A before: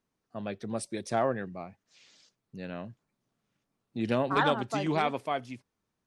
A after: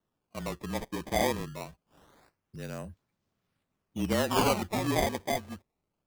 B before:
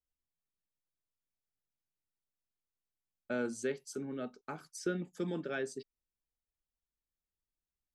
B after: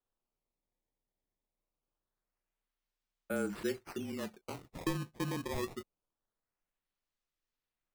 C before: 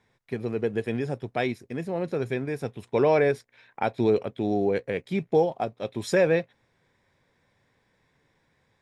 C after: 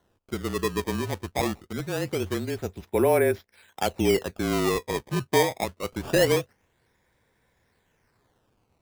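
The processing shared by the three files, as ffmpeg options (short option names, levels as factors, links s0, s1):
-af "afreqshift=-30,acrusher=samples=18:mix=1:aa=0.000001:lfo=1:lforange=28.8:lforate=0.24"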